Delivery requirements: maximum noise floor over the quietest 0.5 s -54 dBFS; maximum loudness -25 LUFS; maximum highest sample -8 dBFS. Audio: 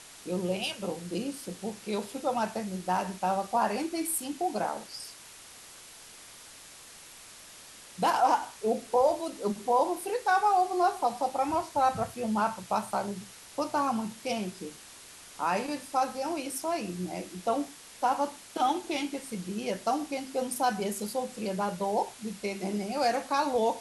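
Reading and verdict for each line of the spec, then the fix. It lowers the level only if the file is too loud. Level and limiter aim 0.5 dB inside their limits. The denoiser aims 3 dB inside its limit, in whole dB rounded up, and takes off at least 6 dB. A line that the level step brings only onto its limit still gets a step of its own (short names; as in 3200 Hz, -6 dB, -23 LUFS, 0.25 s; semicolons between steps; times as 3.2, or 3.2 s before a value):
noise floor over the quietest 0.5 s -50 dBFS: fail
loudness -30.5 LUFS: OK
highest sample -13.5 dBFS: OK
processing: denoiser 7 dB, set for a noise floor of -50 dBFS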